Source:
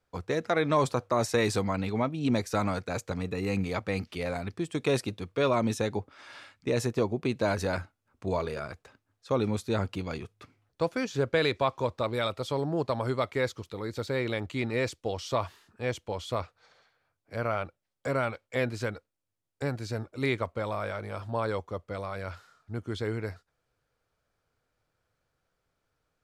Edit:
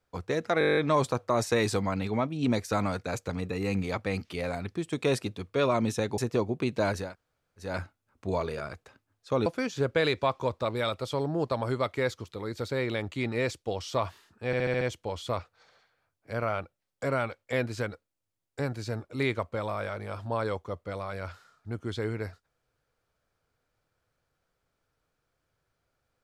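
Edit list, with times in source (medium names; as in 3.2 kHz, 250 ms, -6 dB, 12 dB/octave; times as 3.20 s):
0.59 s: stutter 0.02 s, 10 plays
6.00–6.81 s: delete
7.67 s: insert room tone 0.64 s, crossfade 0.24 s
9.45–10.84 s: delete
15.84 s: stutter 0.07 s, 6 plays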